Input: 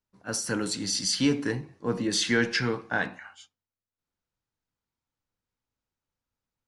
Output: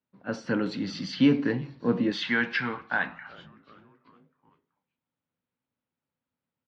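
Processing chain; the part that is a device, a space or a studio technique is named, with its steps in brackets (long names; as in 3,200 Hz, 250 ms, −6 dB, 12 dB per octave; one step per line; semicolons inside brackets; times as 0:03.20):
frequency-shifting delay pedal into a guitar cabinet (echo with shifted repeats 379 ms, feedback 57%, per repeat −150 Hz, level −23.5 dB; loudspeaker in its box 110–3,500 Hz, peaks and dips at 160 Hz +7 dB, 250 Hz +7 dB, 550 Hz +4 dB)
0:02.12–0:03.27: low shelf with overshoot 670 Hz −8 dB, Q 1.5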